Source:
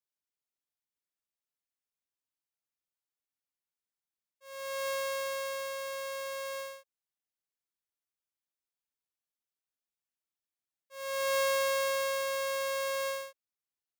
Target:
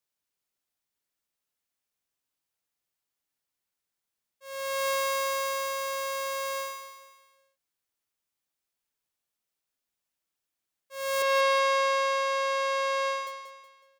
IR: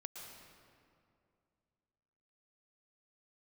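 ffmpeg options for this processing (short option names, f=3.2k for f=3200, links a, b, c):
-filter_complex "[0:a]asettb=1/sr,asplit=3[a][b][c];[a]atrim=end=11.224[d];[b]atrim=start=11.22:end=13.27,asetpts=PTS-STARTPTS,afade=t=in:d=0.004:c=qsin,afade=t=out:st=2.046:d=0.004:c=qsin,highpass=330,lowpass=4.4k[e];[c]atrim=start=13.266[f];[d][e]acrossfade=d=0.004:c1=hsin:c2=qsin[g];[g][f]acrossfade=d=0.004:c1=qsin:c2=hsin,aecho=1:1:185|370|555|740:0.376|0.15|0.0601|0.0241,volume=6.5dB"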